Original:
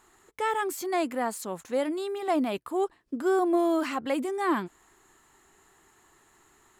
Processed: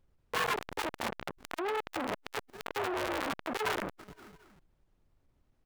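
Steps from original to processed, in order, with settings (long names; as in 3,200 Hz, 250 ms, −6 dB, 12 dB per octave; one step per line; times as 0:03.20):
partials spread apart or drawn together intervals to 117%
gain on a spectral selection 0:01.70–0:02.28, 440–5,700 Hz −23 dB
tempo change 1.2×
comparator with hysteresis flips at −35 dBFS
dynamic equaliser 1,500 Hz, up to +5 dB, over −42 dBFS, Q 0.82
repeating echo 232 ms, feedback 44%, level −23.5 dB
downward compressor, threshold −32 dBFS, peak gain reduction 4 dB
background noise brown −76 dBFS
saturating transformer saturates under 2,300 Hz
level +8.5 dB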